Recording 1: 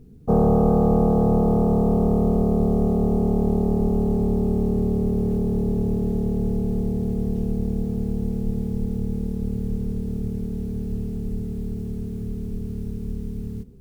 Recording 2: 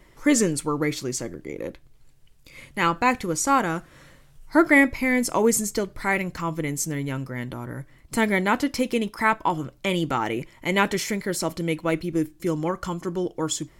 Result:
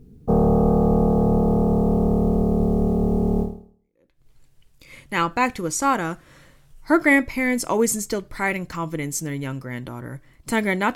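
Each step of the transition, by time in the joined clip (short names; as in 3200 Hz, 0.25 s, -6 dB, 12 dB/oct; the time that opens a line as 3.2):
recording 1
3.84 switch to recording 2 from 1.49 s, crossfade 0.86 s exponential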